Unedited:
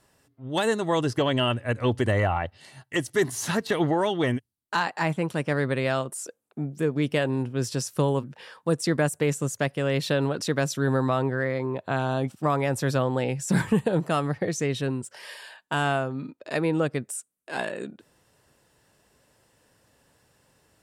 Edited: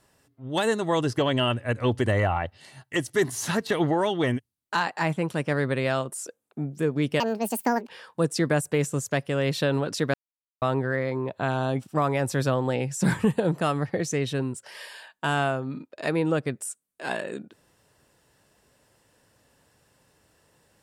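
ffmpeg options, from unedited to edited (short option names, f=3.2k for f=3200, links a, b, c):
-filter_complex "[0:a]asplit=5[a][b][c][d][e];[a]atrim=end=7.204[f];[b]atrim=start=7.2:end=8.37,asetpts=PTS-STARTPTS,asetrate=74970,aresample=44100,atrim=end_sample=30351,asetpts=PTS-STARTPTS[g];[c]atrim=start=8.366:end=10.62,asetpts=PTS-STARTPTS,afade=t=out:st=2.25:d=0.004:c=hsin[h];[d]atrim=start=10.62:end=11.1,asetpts=PTS-STARTPTS,volume=0[i];[e]atrim=start=11.1,asetpts=PTS-STARTPTS,afade=t=in:d=0.004:c=hsin[j];[f][g]acrossfade=d=0.004:c1=hsin:c2=hsin[k];[h][i][j]concat=n=3:v=0:a=1[l];[k][l]acrossfade=d=0.004:c1=hsin:c2=hsin"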